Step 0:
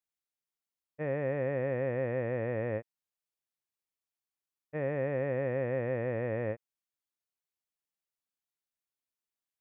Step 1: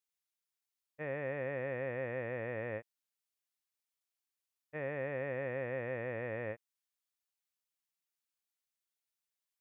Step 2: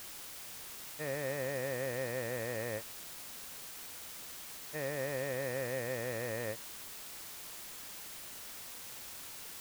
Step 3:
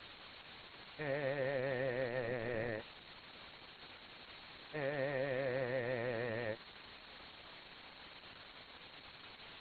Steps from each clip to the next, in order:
tilt shelving filter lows −5.5 dB, about 920 Hz; level −3.5 dB
bit-depth reduction 8 bits, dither triangular; level +1 dB
linear-phase brick-wall low-pass 4,400 Hz; Opus 10 kbit/s 48,000 Hz

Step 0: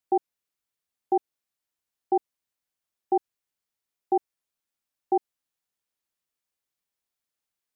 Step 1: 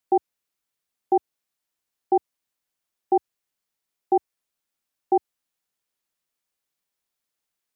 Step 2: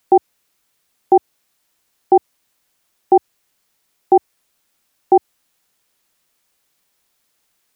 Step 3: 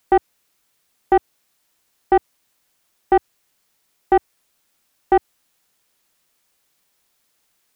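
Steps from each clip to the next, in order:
parametric band 80 Hz −5 dB 0.78 octaves; level +3.5 dB
boost into a limiter +17 dB; level −1 dB
soft clipping −7 dBFS, distortion −15 dB

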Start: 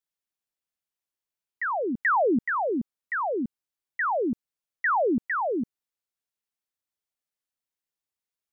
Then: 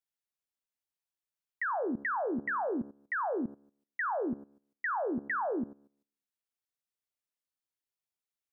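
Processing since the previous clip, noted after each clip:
hum removal 70.43 Hz, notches 24
output level in coarse steps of 16 dB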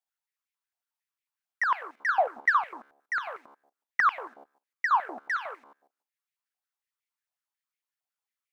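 leveller curve on the samples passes 1
high-pass on a step sequencer 11 Hz 740–2,200 Hz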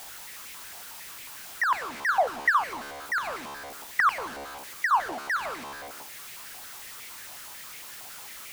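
converter with a step at zero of −34 dBFS

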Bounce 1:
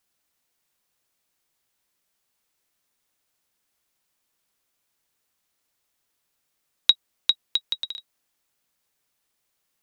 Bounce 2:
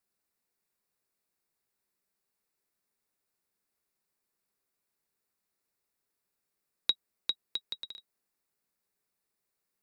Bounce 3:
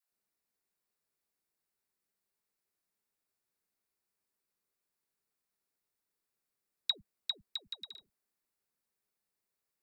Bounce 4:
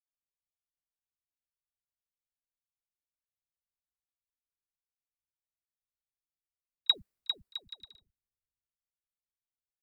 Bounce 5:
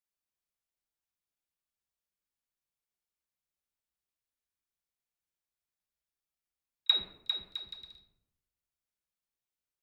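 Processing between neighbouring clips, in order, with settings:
thirty-one-band graphic EQ 200 Hz +6 dB, 400 Hz +7 dB, 3,150 Hz −10 dB, 6,300 Hz −5 dB; level −8 dB
all-pass dispersion lows, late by 118 ms, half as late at 480 Hz; level −4 dB
echo ahead of the sound 33 ms −19 dB; multiband upward and downward expander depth 100%
convolution reverb RT60 0.80 s, pre-delay 6 ms, DRR 3 dB

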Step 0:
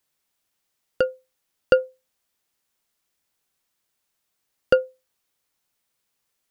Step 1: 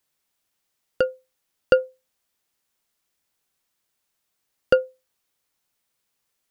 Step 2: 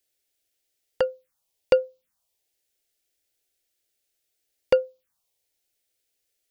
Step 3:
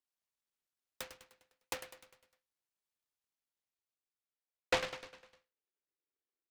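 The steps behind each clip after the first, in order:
no processing that can be heard
phaser swept by the level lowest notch 180 Hz, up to 1,800 Hz, full sweep at −25.5 dBFS
band-pass filter sweep 2,300 Hz → 360 Hz, 0:03.14–0:05.92; on a send: repeating echo 101 ms, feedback 53%, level −11.5 dB; on the sum: short delay modulated by noise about 1,600 Hz, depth 0.31 ms; level −5 dB

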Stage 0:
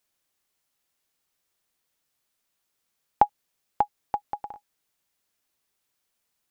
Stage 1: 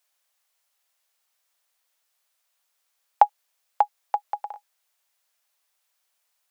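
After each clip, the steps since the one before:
inverse Chebyshev high-pass filter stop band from 270 Hz, stop band 40 dB
level +3.5 dB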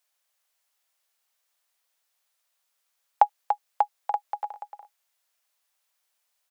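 single-tap delay 289 ms −7.5 dB
level −2.5 dB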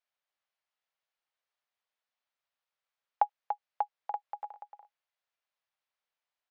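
high-frequency loss of the air 200 metres
level −7.5 dB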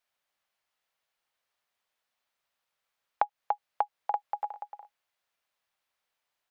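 downward compressor, threshold −30 dBFS, peak gain reduction 10 dB
level +7 dB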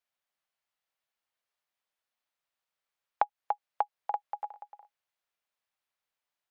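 expander for the loud parts 1.5 to 1, over −35 dBFS

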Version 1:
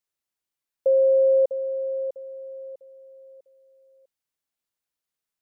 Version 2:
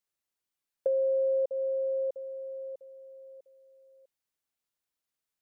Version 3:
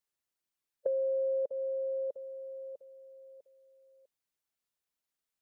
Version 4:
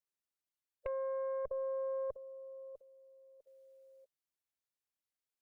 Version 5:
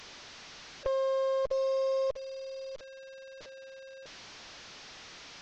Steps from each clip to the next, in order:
downward compressor 4 to 1, threshold −25 dBFS, peak gain reduction 7.5 dB; level −1.5 dB
harmonic and percussive parts rebalanced harmonic −4 dB
harmonic generator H 4 −13 dB, 5 −18 dB, 7 −36 dB, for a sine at −19.5 dBFS; output level in coarse steps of 12 dB; level −1 dB
linear delta modulator 32 kbit/s, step −50 dBFS; level +8 dB

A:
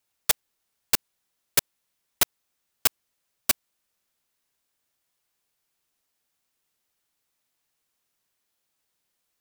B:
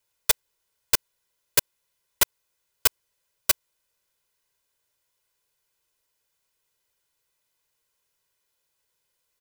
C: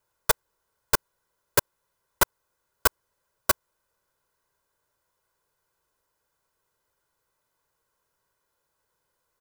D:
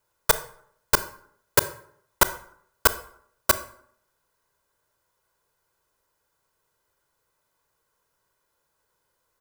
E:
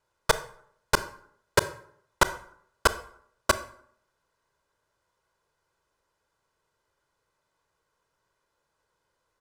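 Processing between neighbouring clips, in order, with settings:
comb filter 2 ms, depth 58%
high shelf with overshoot 1,800 Hz −8.5 dB, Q 1.5; level +5.5 dB
convolution reverb RT60 0.65 s, pre-delay 23 ms, DRR 12.5 dB; level +2.5 dB
high-frequency loss of the air 57 metres

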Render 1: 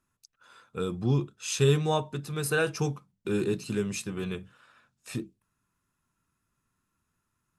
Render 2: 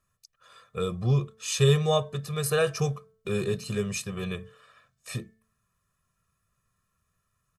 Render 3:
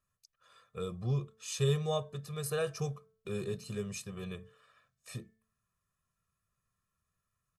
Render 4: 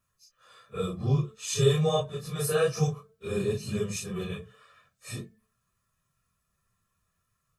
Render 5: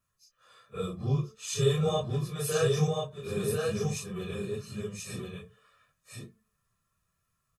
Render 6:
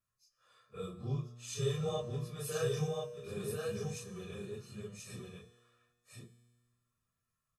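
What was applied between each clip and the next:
comb filter 1.7 ms, depth 88%; hum removal 220.6 Hz, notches 10
dynamic equaliser 2,100 Hz, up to −3 dB, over −45 dBFS, Q 0.82; level −8.5 dB
random phases in long frames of 100 ms; level +7.5 dB
single-tap delay 1,035 ms −3.5 dB; level −3 dB
tuned comb filter 120 Hz, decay 1.6 s, mix 70%; level +1 dB

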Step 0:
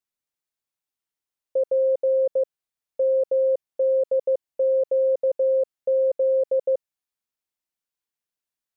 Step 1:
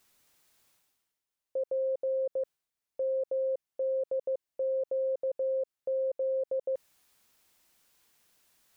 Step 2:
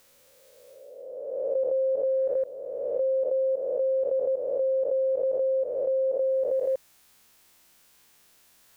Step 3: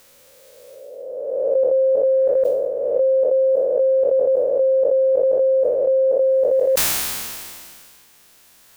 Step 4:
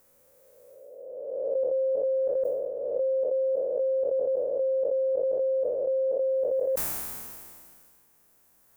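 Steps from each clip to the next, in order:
brickwall limiter −26.5 dBFS, peak gain reduction 10 dB; reversed playback; upward compression, threshold −50 dBFS; reversed playback
peak hold with a rise ahead of every peak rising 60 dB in 1.98 s; level +5 dB
level that may fall only so fast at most 27 dB per second; level +8.5 dB
parametric band 3,600 Hz −14.5 dB 2 octaves; level −8.5 dB

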